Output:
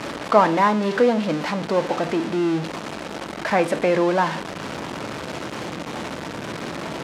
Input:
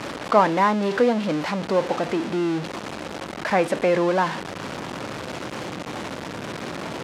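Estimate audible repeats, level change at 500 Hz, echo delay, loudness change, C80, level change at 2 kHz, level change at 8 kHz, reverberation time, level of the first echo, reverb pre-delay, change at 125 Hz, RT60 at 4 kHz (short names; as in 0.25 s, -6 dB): none, +1.0 dB, none, +1.5 dB, 21.0 dB, +1.5 dB, +1.0 dB, 0.65 s, none, 3 ms, +1.5 dB, 0.35 s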